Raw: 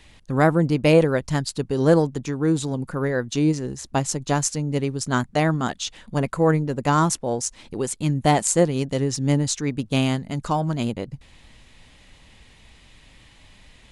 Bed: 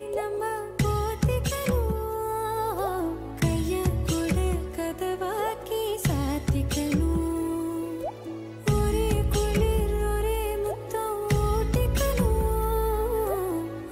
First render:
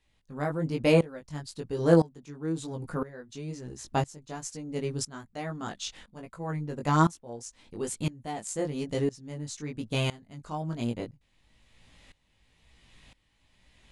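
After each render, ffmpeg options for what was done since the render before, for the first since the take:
ffmpeg -i in.wav -af "flanger=delay=17:depth=3.3:speed=1.1,aeval=exprs='val(0)*pow(10,-20*if(lt(mod(-0.99*n/s,1),2*abs(-0.99)/1000),1-mod(-0.99*n/s,1)/(2*abs(-0.99)/1000),(mod(-0.99*n/s,1)-2*abs(-0.99)/1000)/(1-2*abs(-0.99)/1000))/20)':channel_layout=same" out.wav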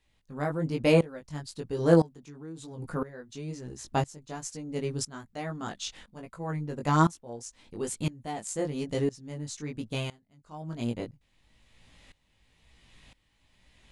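ffmpeg -i in.wav -filter_complex "[0:a]asplit=3[link_01][link_02][link_03];[link_01]afade=type=out:start_time=2.14:duration=0.02[link_04];[link_02]acompressor=threshold=-43dB:ratio=2.5:attack=3.2:release=140:knee=1:detection=peak,afade=type=in:start_time=2.14:duration=0.02,afade=type=out:start_time=2.77:duration=0.02[link_05];[link_03]afade=type=in:start_time=2.77:duration=0.02[link_06];[link_04][link_05][link_06]amix=inputs=3:normalize=0,asplit=3[link_07][link_08][link_09];[link_07]atrim=end=10.23,asetpts=PTS-STARTPTS,afade=type=out:start_time=9.78:duration=0.45:silence=0.16788[link_10];[link_08]atrim=start=10.23:end=10.44,asetpts=PTS-STARTPTS,volume=-15.5dB[link_11];[link_09]atrim=start=10.44,asetpts=PTS-STARTPTS,afade=type=in:duration=0.45:silence=0.16788[link_12];[link_10][link_11][link_12]concat=n=3:v=0:a=1" out.wav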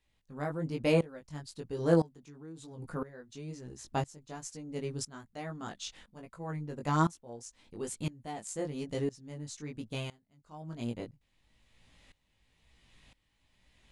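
ffmpeg -i in.wav -af "volume=-5dB" out.wav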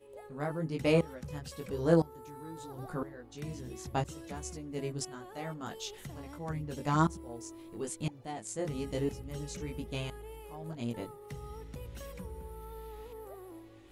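ffmpeg -i in.wav -i bed.wav -filter_complex "[1:a]volume=-20.5dB[link_01];[0:a][link_01]amix=inputs=2:normalize=0" out.wav

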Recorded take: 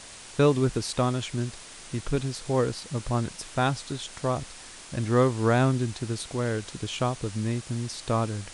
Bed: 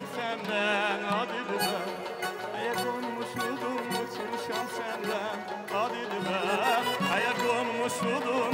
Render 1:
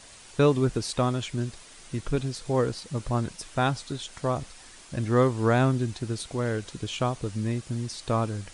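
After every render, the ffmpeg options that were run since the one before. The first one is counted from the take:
ffmpeg -i in.wav -af "afftdn=noise_reduction=6:noise_floor=-45" out.wav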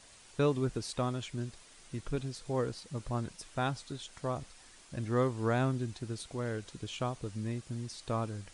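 ffmpeg -i in.wav -af "volume=-8dB" out.wav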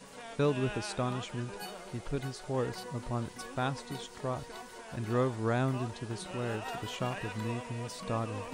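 ffmpeg -i in.wav -i bed.wav -filter_complex "[1:a]volume=-14dB[link_01];[0:a][link_01]amix=inputs=2:normalize=0" out.wav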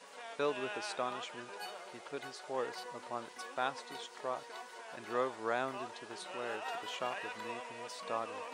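ffmpeg -i in.wav -af "highpass=530,highshelf=frequency=7600:gain=-10" out.wav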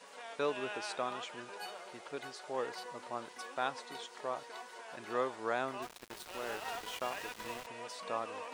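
ffmpeg -i in.wav -filter_complex "[0:a]asettb=1/sr,asplit=3[link_01][link_02][link_03];[link_01]atrim=end=5.824[link_04];[link_02]atrim=start=5.82:end=7.67,asetpts=PTS-STARTPTS,afade=type=in:duration=0.004:curve=qsin,afade=type=out:start_time=1.846:duration=0.004:curve=qsin,aeval=exprs='val(0)*gte(abs(val(0)),0.0075)':channel_layout=same[link_05];[link_03]atrim=start=7.666[link_06];[link_04][link_05]acrossfade=duration=0.004:curve1=hsin:curve2=qsin[link_07];[link_07][link_06]acrossfade=duration=0.004:curve1=qsin:curve2=hsin" out.wav

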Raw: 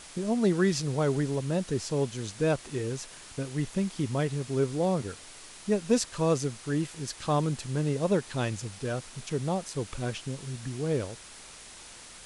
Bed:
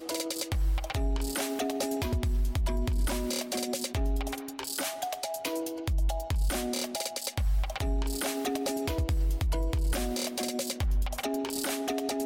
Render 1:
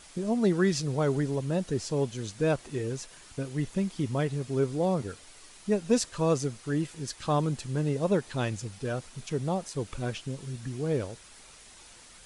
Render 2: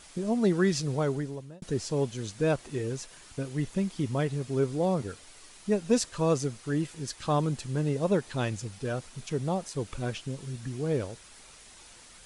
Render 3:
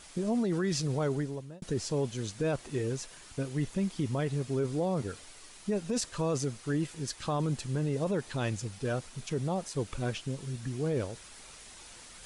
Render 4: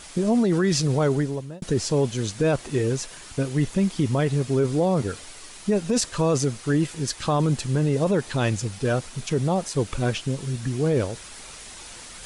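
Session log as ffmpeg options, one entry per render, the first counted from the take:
ffmpeg -i in.wav -af "afftdn=noise_reduction=6:noise_floor=-48" out.wav
ffmpeg -i in.wav -filter_complex "[0:a]asplit=2[link_01][link_02];[link_01]atrim=end=1.62,asetpts=PTS-STARTPTS,afade=type=out:start_time=0.94:duration=0.68[link_03];[link_02]atrim=start=1.62,asetpts=PTS-STARTPTS,afade=type=in:duration=0.004:curve=hsin[link_04];[link_03][link_04]concat=n=2:v=0:a=1" out.wav
ffmpeg -i in.wav -af "areverse,acompressor=mode=upward:threshold=-45dB:ratio=2.5,areverse,alimiter=limit=-22.5dB:level=0:latency=1:release=10" out.wav
ffmpeg -i in.wav -af "volume=9dB" out.wav

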